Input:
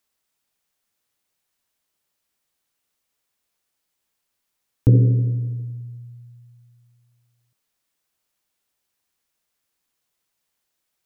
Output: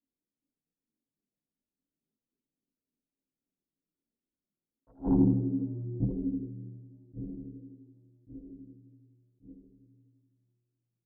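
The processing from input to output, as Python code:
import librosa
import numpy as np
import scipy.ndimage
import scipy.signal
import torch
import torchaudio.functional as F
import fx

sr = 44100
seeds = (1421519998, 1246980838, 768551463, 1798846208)

p1 = np.clip(10.0 ** (15.5 / 20.0) * x, -1.0, 1.0) / 10.0 ** (15.5 / 20.0)
p2 = x + (p1 * librosa.db_to_amplitude(-5.0))
p3 = fx.tilt_eq(p2, sr, slope=3.0)
p4 = fx.leveller(p3, sr, passes=2)
p5 = fx.ladder_lowpass(p4, sr, hz=330.0, resonance_pct=40)
p6 = fx.hum_notches(p5, sr, base_hz=60, count=2)
p7 = p6 + fx.echo_feedback(p6, sr, ms=1133, feedback_pct=44, wet_db=-15, dry=0)
p8 = fx.fold_sine(p7, sr, drive_db=6, ceiling_db=-20.5)
p9 = fx.chorus_voices(p8, sr, voices=6, hz=0.35, base_ms=22, depth_ms=4.1, mix_pct=60)
p10 = fx.rev_double_slope(p9, sr, seeds[0], early_s=0.78, late_s=2.6, knee_db=-18, drr_db=18.0)
p11 = fx.attack_slew(p10, sr, db_per_s=310.0)
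y = p11 * librosa.db_to_amplitude(5.5)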